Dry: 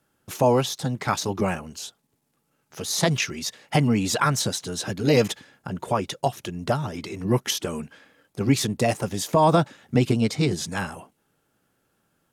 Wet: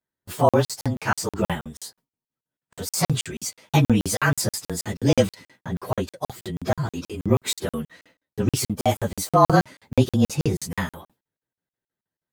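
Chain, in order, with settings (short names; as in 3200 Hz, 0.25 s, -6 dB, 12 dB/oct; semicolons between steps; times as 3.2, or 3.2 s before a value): inharmonic rescaling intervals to 108%; gate with hold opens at -46 dBFS; crackling interface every 0.16 s, samples 2048, zero, from 0.49; gain +4.5 dB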